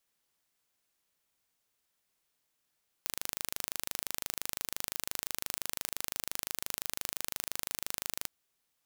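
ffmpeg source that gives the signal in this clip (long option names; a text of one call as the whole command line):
ffmpeg -f lavfi -i "aevalsrc='0.447*eq(mod(n,1709),0)':duration=5.23:sample_rate=44100" out.wav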